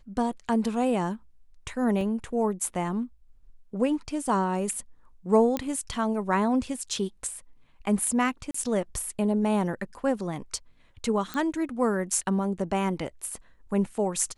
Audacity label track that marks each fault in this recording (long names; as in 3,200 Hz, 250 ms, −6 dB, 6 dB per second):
2.010000	2.010000	drop-out 2.3 ms
5.570000	5.570000	click −14 dBFS
8.510000	8.540000	drop-out 34 ms
11.340000	11.340000	click −18 dBFS